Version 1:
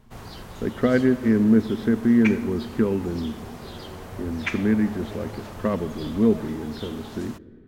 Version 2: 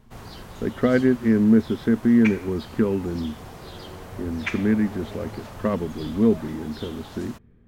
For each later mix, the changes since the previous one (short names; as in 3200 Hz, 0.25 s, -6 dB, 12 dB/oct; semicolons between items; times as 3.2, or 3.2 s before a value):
speech +4.0 dB; reverb: off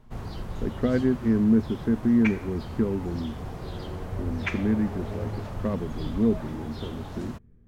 speech -8.0 dB; master: add tilt -2 dB/oct